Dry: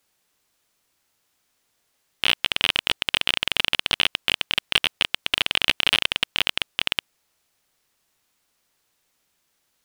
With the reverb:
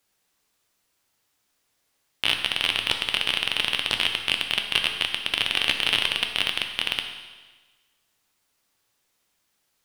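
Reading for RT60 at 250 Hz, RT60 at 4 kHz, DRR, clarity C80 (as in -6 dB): 1.3 s, 1.3 s, 4.0 dB, 8.0 dB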